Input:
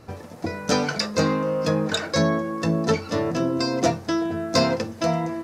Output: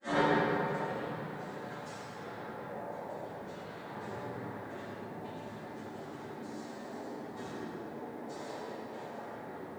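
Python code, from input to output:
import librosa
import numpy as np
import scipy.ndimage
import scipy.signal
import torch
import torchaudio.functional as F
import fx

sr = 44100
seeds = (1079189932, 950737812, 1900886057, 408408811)

p1 = fx.highpass(x, sr, hz=410.0, slope=6)
p2 = fx.spec_gate(p1, sr, threshold_db=-20, keep='strong')
p3 = scipy.signal.sosfilt(scipy.signal.butter(2, 4400.0, 'lowpass', fs=sr, output='sos'), p2)
p4 = fx.hum_notches(p3, sr, base_hz=60, count=10)
p5 = fx.over_compress(p4, sr, threshold_db=-34.0, ratio=-1.0)
p6 = p4 + (p5 * 10.0 ** (-2.0 / 20.0))
p7 = fx.gate_flip(p6, sr, shuts_db=-25.0, range_db=-39)
p8 = fx.granulator(p7, sr, seeds[0], grain_ms=100.0, per_s=20.0, spray_ms=100.0, spread_st=0)
p9 = fx.noise_vocoder(p8, sr, seeds[1], bands=6)
p10 = fx.stretch_vocoder(p9, sr, factor=1.8)
p11 = fx.room_shoebox(p10, sr, seeds[2], volume_m3=190.0, walls='hard', distance_m=2.2)
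p12 = fx.echo_crushed(p11, sr, ms=105, feedback_pct=55, bits=11, wet_db=-8.5)
y = p12 * 10.0 ** (6.5 / 20.0)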